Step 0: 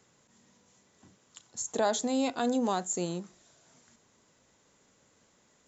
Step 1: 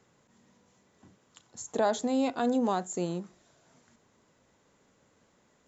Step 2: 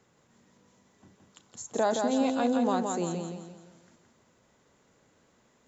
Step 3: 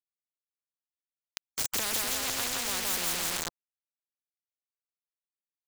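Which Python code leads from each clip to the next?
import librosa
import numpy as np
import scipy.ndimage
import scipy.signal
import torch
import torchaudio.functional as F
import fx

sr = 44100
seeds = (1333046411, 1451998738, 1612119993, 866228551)

y1 = fx.high_shelf(x, sr, hz=3400.0, db=-9.5)
y1 = y1 * librosa.db_to_amplitude(1.5)
y2 = fx.echo_feedback(y1, sr, ms=170, feedback_pct=40, wet_db=-4.5)
y3 = np.where(np.abs(y2) >= 10.0 ** (-38.0 / 20.0), y2, 0.0)
y3 = fx.spectral_comp(y3, sr, ratio=10.0)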